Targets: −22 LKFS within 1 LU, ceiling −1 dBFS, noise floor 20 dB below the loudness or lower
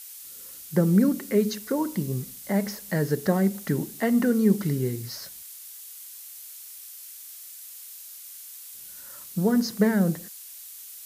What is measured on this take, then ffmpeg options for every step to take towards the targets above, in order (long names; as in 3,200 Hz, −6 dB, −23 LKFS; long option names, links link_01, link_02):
background noise floor −43 dBFS; target noise floor −45 dBFS; integrated loudness −25.0 LKFS; sample peak −9.0 dBFS; target loudness −22.0 LKFS
→ -af "afftdn=noise_reduction=6:noise_floor=-43"
-af "volume=3dB"